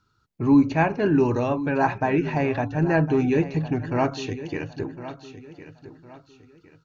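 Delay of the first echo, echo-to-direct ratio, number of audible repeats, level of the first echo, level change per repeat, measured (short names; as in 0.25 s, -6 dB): 1.058 s, -13.5 dB, 3, -14.0 dB, -9.5 dB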